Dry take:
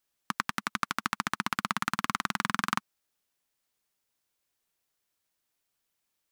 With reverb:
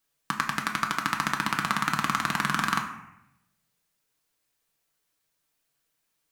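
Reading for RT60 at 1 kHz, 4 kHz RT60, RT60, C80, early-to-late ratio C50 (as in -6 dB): 0.80 s, 0.55 s, 0.80 s, 10.5 dB, 8.5 dB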